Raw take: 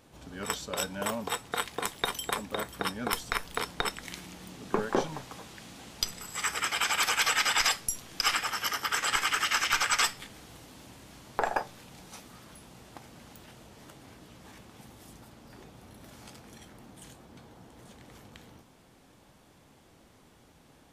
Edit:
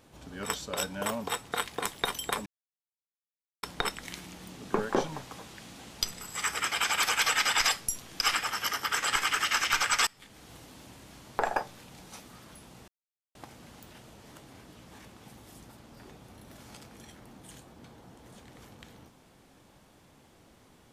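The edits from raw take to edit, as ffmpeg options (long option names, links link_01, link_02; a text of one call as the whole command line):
ffmpeg -i in.wav -filter_complex "[0:a]asplit=5[link_01][link_02][link_03][link_04][link_05];[link_01]atrim=end=2.46,asetpts=PTS-STARTPTS,afade=type=out:start_time=2.456:duration=0.004:curve=hsin[link_06];[link_02]atrim=start=2.46:end=3.63,asetpts=PTS-STARTPTS,volume=0[link_07];[link_03]atrim=start=3.63:end=10.07,asetpts=PTS-STARTPTS,afade=type=in:duration=0.004:curve=hsin,afade=type=out:start_time=6.436:duration=0.004:curve=hsin:silence=0.0794328[link_08];[link_04]atrim=start=10.07:end=12.88,asetpts=PTS-STARTPTS,afade=type=in:duration=0.46:silence=0.0794328,afade=type=out:start_time=2.806:duration=0.004:curve=hsin,apad=pad_dur=0.47[link_09];[link_05]atrim=start=12.88,asetpts=PTS-STARTPTS,afade=type=in:duration=0.004:curve=hsin[link_10];[link_06][link_07][link_08][link_09][link_10]concat=n=5:v=0:a=1" out.wav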